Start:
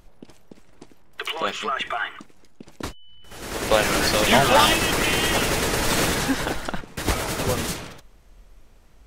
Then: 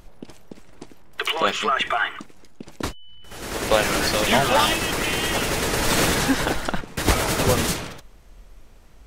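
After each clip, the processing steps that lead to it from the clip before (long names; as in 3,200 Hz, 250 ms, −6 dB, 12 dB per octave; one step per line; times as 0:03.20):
speech leveller 2 s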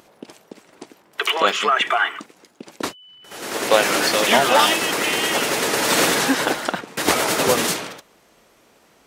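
high-pass filter 260 Hz 12 dB per octave
level +3.5 dB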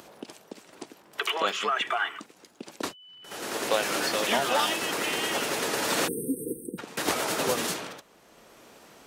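time-frequency box erased 0:06.08–0:06.79, 510–8,200 Hz
parametric band 2,100 Hz −2.5 dB 0.23 octaves
multiband upward and downward compressor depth 40%
level −8.5 dB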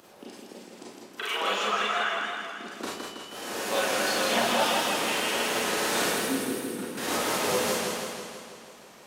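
four-comb reverb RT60 0.39 s, combs from 30 ms, DRR −4.5 dB
feedback echo with a swinging delay time 162 ms, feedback 63%, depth 82 cents, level −3.5 dB
level −7 dB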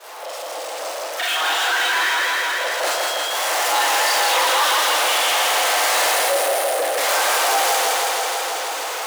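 fade in at the beginning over 2.63 s
power curve on the samples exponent 0.35
frequency shifter +290 Hz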